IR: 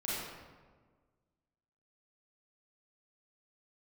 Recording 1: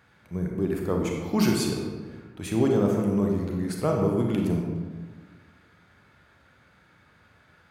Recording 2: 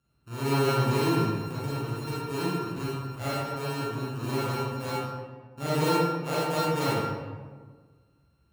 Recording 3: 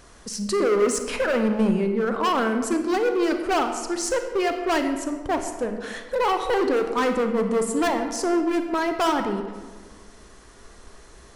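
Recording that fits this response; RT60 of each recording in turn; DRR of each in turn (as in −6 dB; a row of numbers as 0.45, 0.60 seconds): 2; 1.5, 1.5, 1.5 seconds; 0.5, −9.0, 6.0 decibels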